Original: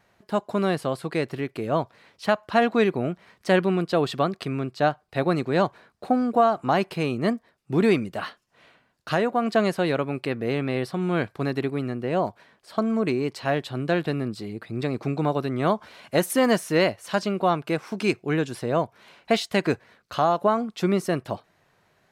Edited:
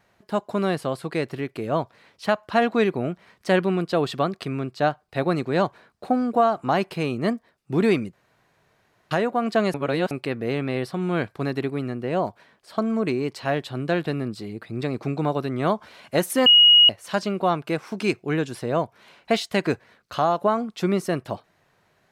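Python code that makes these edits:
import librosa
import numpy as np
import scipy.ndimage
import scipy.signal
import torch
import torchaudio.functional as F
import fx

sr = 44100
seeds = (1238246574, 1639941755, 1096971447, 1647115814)

y = fx.edit(x, sr, fx.room_tone_fill(start_s=8.13, length_s=0.98),
    fx.reverse_span(start_s=9.74, length_s=0.37),
    fx.bleep(start_s=16.46, length_s=0.43, hz=2890.0, db=-9.5), tone=tone)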